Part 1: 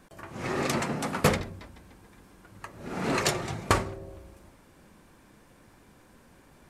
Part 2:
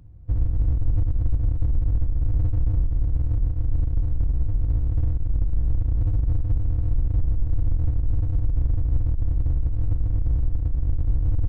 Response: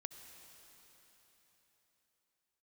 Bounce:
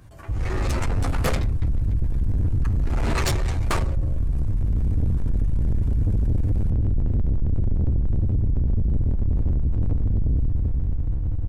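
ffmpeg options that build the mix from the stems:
-filter_complex "[0:a]asplit=2[link_01][link_02];[link_02]adelay=9.8,afreqshift=-0.68[link_03];[link_01][link_03]amix=inputs=2:normalize=1,volume=2.5dB[link_04];[1:a]lowshelf=frequency=92:gain=-7,volume=0.5dB,asplit=2[link_05][link_06];[link_06]volume=-5dB[link_07];[2:a]atrim=start_sample=2205[link_08];[link_07][link_08]afir=irnorm=-1:irlink=0[link_09];[link_04][link_05][link_09]amix=inputs=3:normalize=0,dynaudnorm=framelen=160:gausssize=11:maxgain=11dB,asoftclip=type=tanh:threshold=-17.5dB"

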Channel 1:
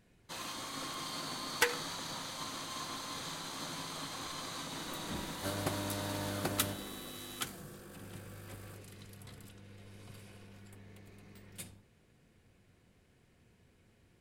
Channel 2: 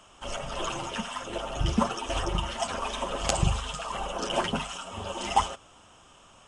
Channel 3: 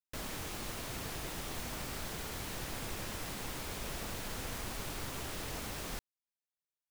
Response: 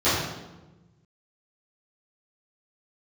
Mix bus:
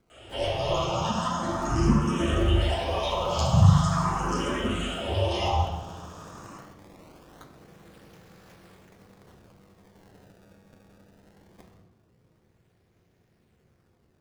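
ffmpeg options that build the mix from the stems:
-filter_complex "[0:a]acrossover=split=340|970[link_01][link_02][link_03];[link_01]acompressor=threshold=-51dB:ratio=4[link_04];[link_02]acompressor=threshold=-55dB:ratio=4[link_05];[link_03]acompressor=threshold=-51dB:ratio=4[link_06];[link_04][link_05][link_06]amix=inputs=3:normalize=0,tremolo=f=290:d=1,acrusher=samples=24:mix=1:aa=0.000001:lfo=1:lforange=38.4:lforate=0.21,volume=1.5dB,asplit=2[link_07][link_08];[link_08]volume=-22dB[link_09];[1:a]acrossover=split=160[link_10][link_11];[link_11]acompressor=threshold=-34dB:ratio=6[link_12];[link_10][link_12]amix=inputs=2:normalize=0,asplit=2[link_13][link_14];[link_14]afreqshift=0.42[link_15];[link_13][link_15]amix=inputs=2:normalize=1,adelay=100,volume=0.5dB,asplit=2[link_16][link_17];[link_17]volume=-8.5dB[link_18];[3:a]atrim=start_sample=2205[link_19];[link_09][link_18]amix=inputs=2:normalize=0[link_20];[link_20][link_19]afir=irnorm=-1:irlink=0[link_21];[link_07][link_16][link_21]amix=inputs=3:normalize=0"

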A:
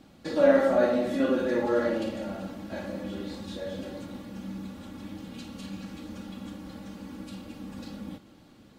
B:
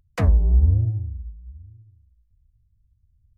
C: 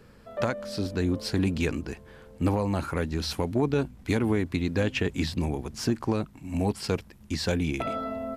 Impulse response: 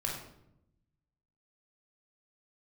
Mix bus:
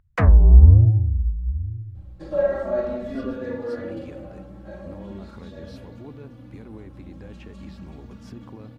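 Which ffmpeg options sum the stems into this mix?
-filter_complex "[0:a]aeval=exprs='val(0)+0.00794*(sin(2*PI*60*n/s)+sin(2*PI*2*60*n/s)/2+sin(2*PI*3*60*n/s)/3+sin(2*PI*4*60*n/s)/4+sin(2*PI*5*60*n/s)/5)':channel_layout=same,asplit=2[link_01][link_02];[link_02]adelay=3.4,afreqshift=0.4[link_03];[link_01][link_03]amix=inputs=2:normalize=1,adelay=1950,volume=-3.5dB,asplit=2[link_04][link_05];[link_05]volume=-9dB[link_06];[1:a]equalizer=frequency=1600:width_type=o:width=1.7:gain=10.5,dynaudnorm=framelen=210:gausssize=3:maxgain=16dB,volume=-0.5dB[link_07];[2:a]alimiter=limit=-21dB:level=0:latency=1:release=134,adelay=2450,volume=-11dB[link_08];[3:a]atrim=start_sample=2205[link_09];[link_06][link_09]afir=irnorm=-1:irlink=0[link_10];[link_04][link_07][link_08][link_10]amix=inputs=4:normalize=0,highshelf=frequency=2500:gain=-11.5"

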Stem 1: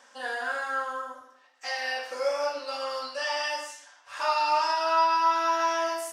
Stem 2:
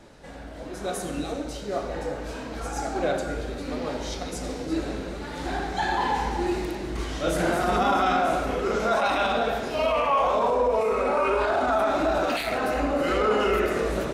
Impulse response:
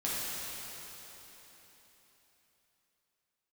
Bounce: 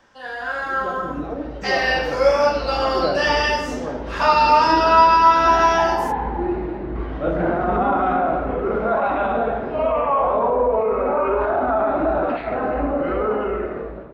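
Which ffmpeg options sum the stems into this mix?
-filter_complex "[0:a]dynaudnorm=framelen=120:gausssize=7:maxgain=6dB,volume=0dB[link_01];[1:a]lowpass=1400,dynaudnorm=framelen=430:gausssize=3:maxgain=11.5dB,volume=-12.5dB[link_02];[link_01][link_02]amix=inputs=2:normalize=0,equalizer=frequency=9000:width=1:gain=-14.5,dynaudnorm=framelen=210:gausssize=11:maxgain=6.5dB"

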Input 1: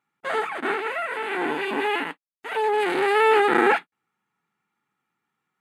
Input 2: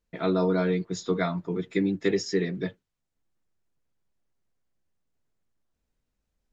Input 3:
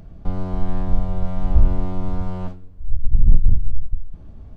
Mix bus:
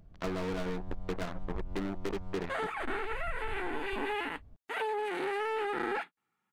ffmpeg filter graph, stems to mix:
ffmpeg -i stem1.wav -i stem2.wav -i stem3.wav -filter_complex "[0:a]asoftclip=type=tanh:threshold=-8.5dB,adelay=2250,volume=-3dB[link_01];[1:a]lowpass=1600,acrusher=bits=3:mix=0:aa=0.5,volume=22.5dB,asoftclip=hard,volume=-22.5dB,volume=-1.5dB[link_02];[2:a]acompressor=threshold=-12dB:ratio=6,volume=-15.5dB[link_03];[link_01][link_02][link_03]amix=inputs=3:normalize=0,acompressor=threshold=-31dB:ratio=5" out.wav

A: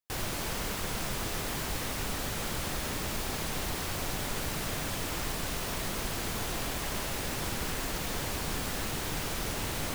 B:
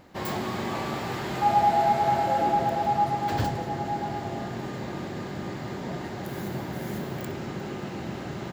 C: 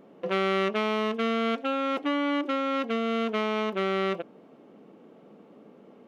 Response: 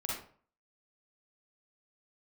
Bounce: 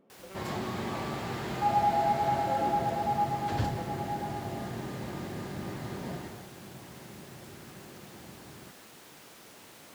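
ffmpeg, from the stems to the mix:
-filter_complex "[0:a]highpass=220,volume=-16.5dB[link_01];[1:a]lowpass=9400,adelay=200,volume=-5dB,afade=type=out:start_time=6.1:duration=0.39:silence=0.251189[link_02];[2:a]acompressor=threshold=-35dB:ratio=6,volume=-12.5dB[link_03];[link_01][link_02][link_03]amix=inputs=3:normalize=0,lowshelf=frequency=120:gain=5"

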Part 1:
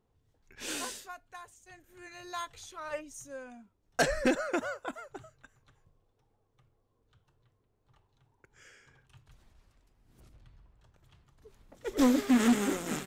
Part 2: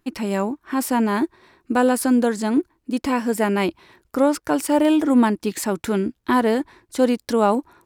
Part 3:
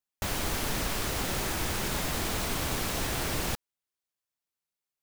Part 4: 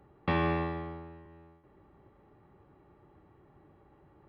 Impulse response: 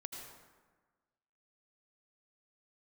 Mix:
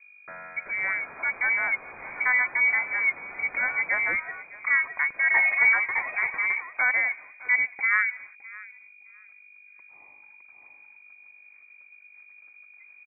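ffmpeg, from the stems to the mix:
-filter_complex "[0:a]adelay=1350,volume=-1.5dB,asplit=2[link_01][link_02];[link_02]volume=-3.5dB[link_03];[1:a]adelay=500,volume=-6dB,asplit=3[link_04][link_05][link_06];[link_05]volume=-20.5dB[link_07];[link_06]volume=-19.5dB[link_08];[2:a]highpass=1400,adelay=550,volume=-4dB,asplit=2[link_09][link_10];[link_10]volume=-11.5dB[link_11];[3:a]highpass=880,volume=-7dB,asplit=2[link_12][link_13];[link_13]volume=-5dB[link_14];[4:a]atrim=start_sample=2205[link_15];[link_07][link_15]afir=irnorm=-1:irlink=0[link_16];[link_03][link_08][link_11][link_14]amix=inputs=4:normalize=0,aecho=0:1:612|1224|1836:1|0.19|0.0361[link_17];[link_01][link_04][link_09][link_12][link_16][link_17]amix=inputs=6:normalize=0,aeval=exprs='val(0)+0.00282*(sin(2*PI*50*n/s)+sin(2*PI*2*50*n/s)/2+sin(2*PI*3*50*n/s)/3+sin(2*PI*4*50*n/s)/4+sin(2*PI*5*50*n/s)/5)':channel_layout=same,lowpass=frequency=2100:width_type=q:width=0.5098,lowpass=frequency=2100:width_type=q:width=0.6013,lowpass=frequency=2100:width_type=q:width=0.9,lowpass=frequency=2100:width_type=q:width=2.563,afreqshift=-2500"

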